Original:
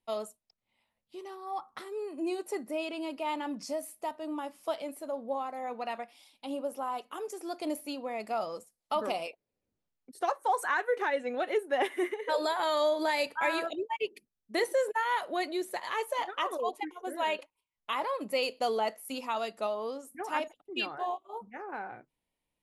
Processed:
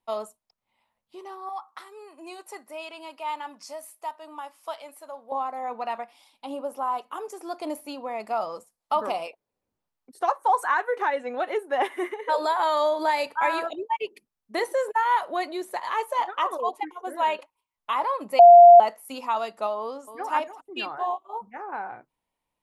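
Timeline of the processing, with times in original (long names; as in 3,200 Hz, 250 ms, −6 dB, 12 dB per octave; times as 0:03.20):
0:01.49–0:05.32: high-pass filter 1,300 Hz 6 dB per octave
0:18.39–0:18.80: beep over 696 Hz −11 dBFS
0:19.78–0:20.31: delay throw 290 ms, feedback 10%, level −11.5 dB
whole clip: parametric band 980 Hz +9 dB 1.1 octaves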